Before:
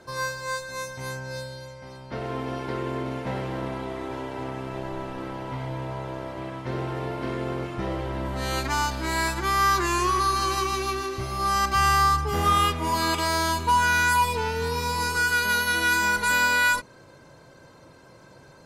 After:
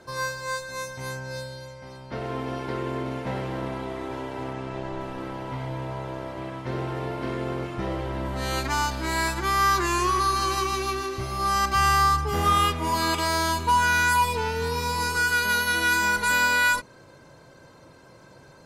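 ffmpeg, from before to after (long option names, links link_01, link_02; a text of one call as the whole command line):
ffmpeg -i in.wav -filter_complex "[0:a]asettb=1/sr,asplit=3[link_01][link_02][link_03];[link_01]atrim=end=4.534[link_04];[link_02]atrim=start=4.53:end=5.01,asetpts=PTS-STARTPTS,afade=type=in:duration=0.004:curve=qsin,afade=type=out:start_time=0.476:duration=0.004:curve=qsin,lowpass=8100[link_05];[link_03]atrim=start=5.006[link_06];[link_04][link_05]acrossfade=duration=0.004:curve1=hsin:curve2=qsin[link_07];[link_07][link_06]acrossfade=duration=0.004:curve1=qsin:curve2=hsin" out.wav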